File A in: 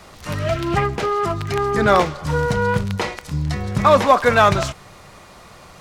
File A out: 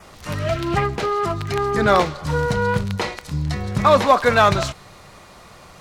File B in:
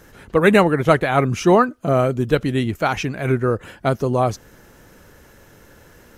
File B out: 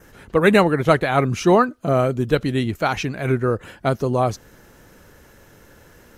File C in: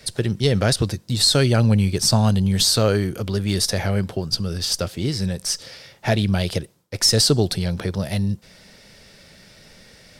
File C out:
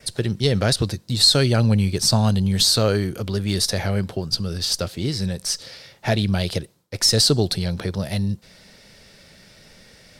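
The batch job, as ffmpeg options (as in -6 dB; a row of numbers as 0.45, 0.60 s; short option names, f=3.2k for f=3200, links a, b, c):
-af "adynamicequalizer=threshold=0.00794:dfrequency=4100:dqfactor=5.2:tfrequency=4100:tqfactor=5.2:attack=5:release=100:ratio=0.375:range=2.5:mode=boostabove:tftype=bell,volume=-1dB"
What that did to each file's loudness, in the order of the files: -1.0, -1.0, 0.0 LU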